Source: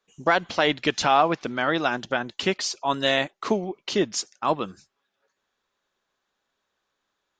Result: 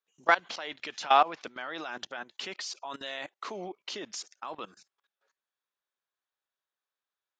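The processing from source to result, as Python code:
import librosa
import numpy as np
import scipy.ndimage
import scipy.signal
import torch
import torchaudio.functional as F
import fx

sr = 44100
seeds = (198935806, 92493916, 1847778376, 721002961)

y = fx.weighting(x, sr, curve='A')
y = fx.level_steps(y, sr, step_db=19)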